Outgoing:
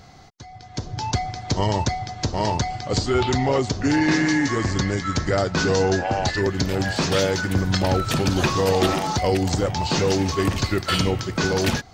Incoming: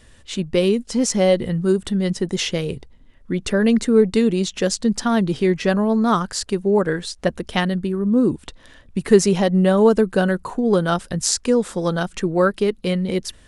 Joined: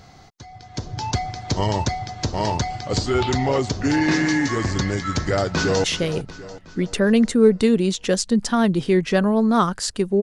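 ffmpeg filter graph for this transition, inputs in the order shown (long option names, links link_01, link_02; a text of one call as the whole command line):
ffmpeg -i cue0.wav -i cue1.wav -filter_complex "[0:a]apad=whole_dur=10.22,atrim=end=10.22,atrim=end=5.842[link_01];[1:a]atrim=start=2.368:end=6.75[link_02];[link_01][link_02]acrossfade=duration=0.004:curve1=hsin:curve2=hsin,asplit=2[link_03][link_04];[link_04]afade=type=in:start_time=5.18:duration=0.01,afade=type=out:start_time=5.84:duration=0.01,aecho=0:1:370|740|1110|1480|1850|2220:0.223872|0.12313|0.0677213|0.0372467|0.0204857|0.0112671[link_05];[link_03][link_05]amix=inputs=2:normalize=0" out.wav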